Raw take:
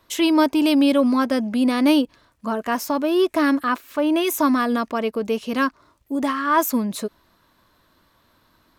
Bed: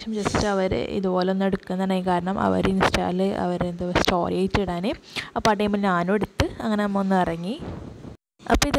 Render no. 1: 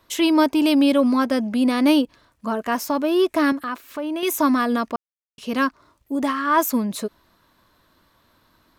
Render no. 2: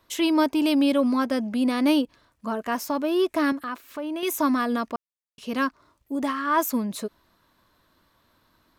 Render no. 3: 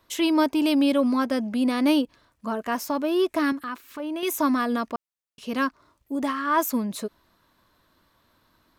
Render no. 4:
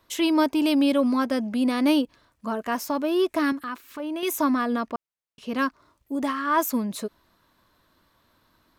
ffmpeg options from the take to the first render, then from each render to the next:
-filter_complex "[0:a]asettb=1/sr,asplit=3[a][b][c];[a]atrim=end=3.524[d];[b]atrim=start=3.52:end=4.23,asetpts=PTS-STARTPTS,afade=t=in:d=0.004:c=qsin,afade=t=out:st=0.706:d=0.004:c=qsin,acompressor=threshold=-29dB:ratio=2:attack=3.2:release=140:knee=1:detection=peak[e];[c]atrim=start=4.226[f];[d][e]acrossfade=d=0.004:c1=hsin:c2=qsin[g];[g][f]acrossfade=d=0.004:c1=qsin:c2=hsin,asplit=3[h][i][j];[h]atrim=end=4.96,asetpts=PTS-STARTPTS,afade=t=out:st=4.956:d=0.004:c=hsin[k];[i]atrim=start=4.96:end=5.38,asetpts=PTS-STARTPTS,volume=0[l];[j]atrim=start=5.38,asetpts=PTS-STARTPTS,afade=t=in:d=0.004:c=hsin[m];[k][l][m]concat=n=3:v=0:a=1"
-af "volume=-4dB"
-filter_complex "[0:a]asettb=1/sr,asplit=3[a][b][c];[a]atrim=end=3.394[d];[b]atrim=start=3.39:end=4,asetpts=PTS-STARTPTS,afade=t=in:d=0.004:c=qsin,afade=t=out:st=0.606:d=0.004:c=qsin,equalizer=f=620:w=2.2:g=-7[e];[c]atrim=start=3.996[f];[d][e]acrossfade=d=0.004:c1=hsin:c2=qsin[g];[g][f]acrossfade=d=0.004:c1=qsin:c2=hsin"
-filter_complex "[0:a]asettb=1/sr,asplit=3[a][b][c];[a]atrim=end=4.444[d];[b]atrim=start=4.44:end=5.59,asetpts=PTS-STARTPTS,afade=t=in:d=0.004:c=qsin,afade=t=out:st=1.146:d=0.004:c=qsin,highshelf=f=4.4k:g=-7[e];[c]atrim=start=5.586[f];[d][e]acrossfade=d=0.004:c1=hsin:c2=qsin[g];[g][f]acrossfade=d=0.004:c1=qsin:c2=hsin"

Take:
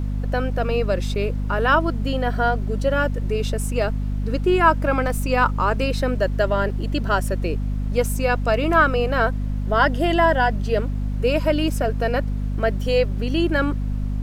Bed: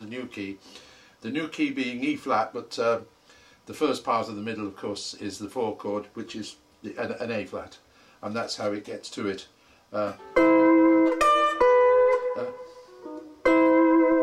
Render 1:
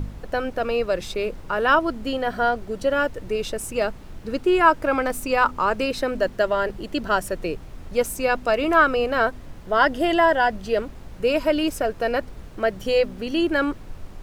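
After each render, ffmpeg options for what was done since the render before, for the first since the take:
-af "bandreject=f=50:t=h:w=4,bandreject=f=100:t=h:w=4,bandreject=f=150:t=h:w=4,bandreject=f=200:t=h:w=4,bandreject=f=250:t=h:w=4"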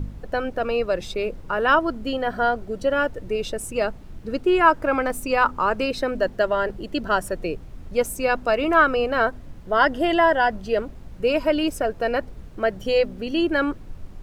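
-af "afftdn=nr=6:nf=-40"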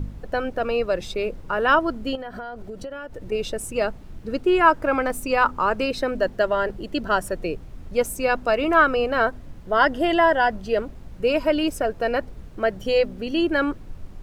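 -filter_complex "[0:a]asettb=1/sr,asplit=3[a][b][c];[a]atrim=end=2.154[d];[b]atrim=start=2.15:end=3.32,asetpts=PTS-STARTPTS,afade=t=in:d=0.004:c=qsin,afade=t=out:st=1.166:d=0.004:c=qsin,acompressor=threshold=-30dB:ratio=12:attack=3.2:release=140:knee=1:detection=peak[e];[c]atrim=start=3.316[f];[d][e]acrossfade=d=0.004:c1=hsin:c2=qsin[g];[g][f]acrossfade=d=0.004:c1=qsin:c2=hsin"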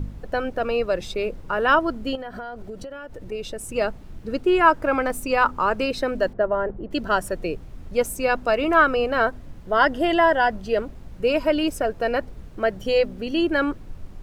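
-filter_complex "[0:a]asettb=1/sr,asplit=3[a][b][c];[a]atrim=end=2.834[d];[b]atrim=start=2.83:end=3.69,asetpts=PTS-STARTPTS,afade=t=in:d=0.004:c=qsin,afade=t=out:st=0.856:d=0.004:c=qsin,acompressor=threshold=-35dB:ratio=1.5:attack=3.2:release=140:knee=1:detection=peak[e];[c]atrim=start=3.686[f];[d][e]acrossfade=d=0.004:c1=hsin:c2=qsin[g];[g][f]acrossfade=d=0.004:c1=qsin:c2=hsin,asettb=1/sr,asplit=3[h][i][j];[h]atrim=end=6.334[k];[i]atrim=start=6.33:end=6.91,asetpts=PTS-STARTPTS,afade=t=in:d=0.004:c=qsin,afade=t=out:st=0.576:d=0.004:c=qsin,lowpass=1.2k[l];[j]atrim=start=6.906[m];[k][l]acrossfade=d=0.004:c1=hsin:c2=qsin[n];[n][m]acrossfade=d=0.004:c1=qsin:c2=hsin"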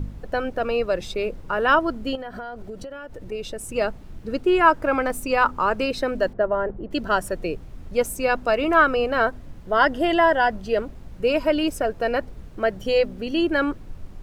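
-af anull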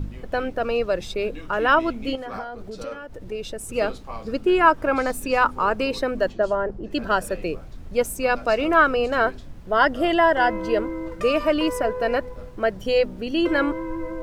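-filter_complex "[1:a]volume=-11.5dB[a];[0:a][a]amix=inputs=2:normalize=0"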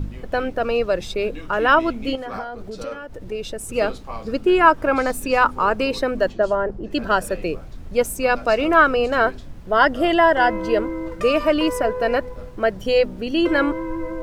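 -af "volume=2.5dB"

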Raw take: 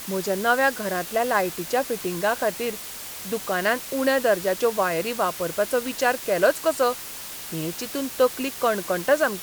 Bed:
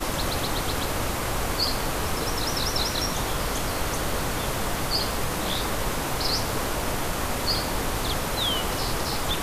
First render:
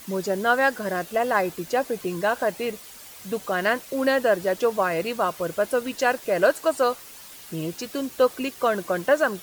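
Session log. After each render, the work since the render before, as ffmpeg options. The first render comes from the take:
-af "afftdn=nr=9:nf=-37"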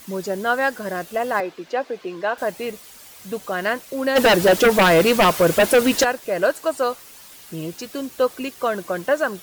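-filter_complex "[0:a]asettb=1/sr,asplit=3[a][b][c];[a]atrim=end=1.404[d];[b]atrim=start=1.4:end=2.38,asetpts=PTS-STARTPTS,afade=t=in:d=0.004:c=qsin,afade=t=out:st=0.976:d=0.004:c=qsin,acrossover=split=240 5000:gain=0.158 1 0.0891[e][f][g];[e][f][g]amix=inputs=3:normalize=0[h];[c]atrim=start=2.376[i];[d][h]acrossfade=d=0.004:c1=hsin:c2=qsin[j];[j][i]acrossfade=d=0.004:c1=qsin:c2=hsin,asplit=3[k][l][m];[k]afade=t=out:st=4.15:d=0.02[n];[l]aeval=exprs='0.335*sin(PI/2*3.16*val(0)/0.335)':c=same,afade=t=in:st=4.15:d=0.02,afade=t=out:st=6.03:d=0.02[o];[m]afade=t=in:st=6.03:d=0.02[p];[n][o][p]amix=inputs=3:normalize=0"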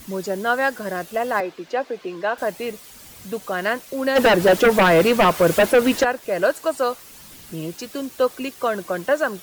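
-filter_complex "[0:a]acrossover=split=290|740|2700[a][b][c][d];[a]acompressor=mode=upward:threshold=-38dB:ratio=2.5[e];[d]alimiter=limit=-19.5dB:level=0:latency=1:release=333[f];[e][b][c][f]amix=inputs=4:normalize=0"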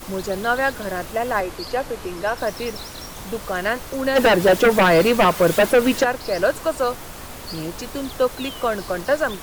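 -filter_complex "[1:a]volume=-9.5dB[a];[0:a][a]amix=inputs=2:normalize=0"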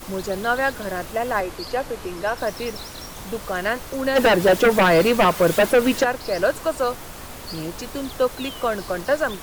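-af "volume=-1dB"

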